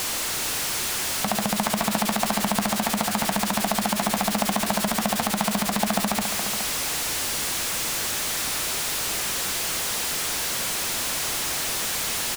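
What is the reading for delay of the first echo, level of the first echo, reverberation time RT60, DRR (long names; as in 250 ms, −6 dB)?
419 ms, −9.0 dB, no reverb audible, no reverb audible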